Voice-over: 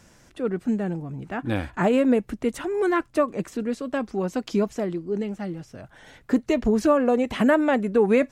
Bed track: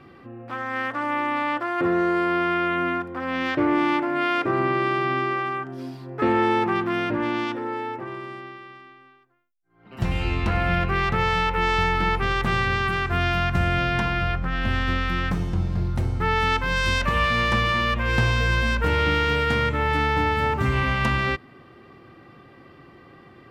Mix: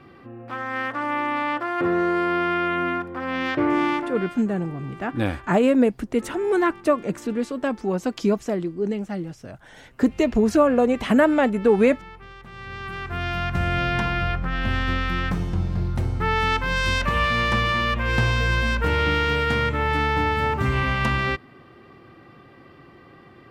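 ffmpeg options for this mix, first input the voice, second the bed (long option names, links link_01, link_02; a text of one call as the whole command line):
ffmpeg -i stem1.wav -i stem2.wav -filter_complex "[0:a]adelay=3700,volume=2dB[link_01];[1:a]volume=20dB,afade=type=out:start_time=3.85:duration=0.5:silence=0.1,afade=type=in:start_time=12.52:duration=1.36:silence=0.1[link_02];[link_01][link_02]amix=inputs=2:normalize=0" out.wav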